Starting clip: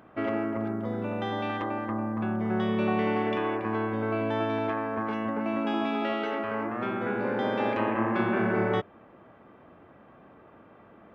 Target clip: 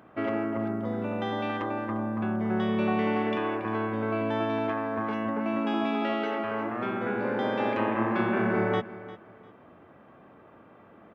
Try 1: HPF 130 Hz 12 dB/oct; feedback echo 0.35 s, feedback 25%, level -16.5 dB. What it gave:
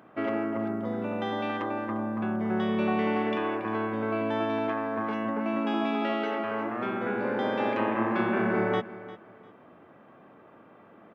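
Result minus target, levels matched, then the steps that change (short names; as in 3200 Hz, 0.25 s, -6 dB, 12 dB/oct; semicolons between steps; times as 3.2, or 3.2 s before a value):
125 Hz band -2.5 dB
change: HPF 63 Hz 12 dB/oct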